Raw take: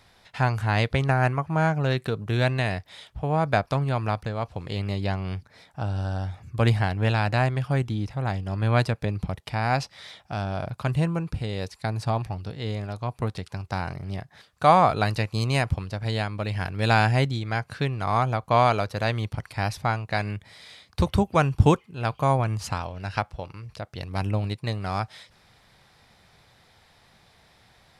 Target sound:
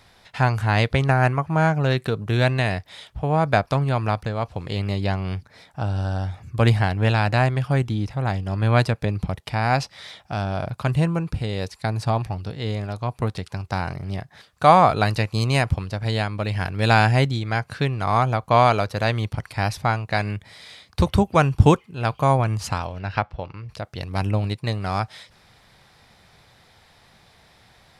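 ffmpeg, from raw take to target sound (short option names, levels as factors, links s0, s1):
-filter_complex "[0:a]asettb=1/sr,asplit=3[s0][s1][s2];[s0]atrim=end=22.994[s3];[s1]atrim=start=22.99:end=23.69,asetpts=PTS-STARTPTS,afade=t=in:d=0.004:c=qsin,afade=t=out:st=0.696:d=0.004:c=qsin,lowpass=3700[s4];[s2]atrim=start=23.686[s5];[s3][s4]acrossfade=d=0.004:c1=hsin:c2=qsin[s6];[s6][s5]acrossfade=d=0.004:c1=qsin:c2=hsin,volume=1.5"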